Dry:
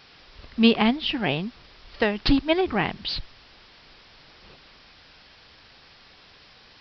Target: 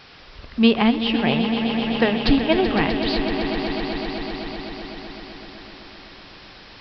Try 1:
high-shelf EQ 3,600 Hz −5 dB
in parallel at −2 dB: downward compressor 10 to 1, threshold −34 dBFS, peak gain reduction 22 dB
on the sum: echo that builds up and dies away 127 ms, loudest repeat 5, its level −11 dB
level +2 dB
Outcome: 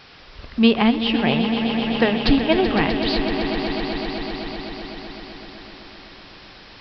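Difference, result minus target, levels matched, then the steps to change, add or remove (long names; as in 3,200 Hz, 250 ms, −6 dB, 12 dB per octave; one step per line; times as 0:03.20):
downward compressor: peak gain reduction −10 dB
change: downward compressor 10 to 1, threshold −45 dBFS, peak gain reduction 31.5 dB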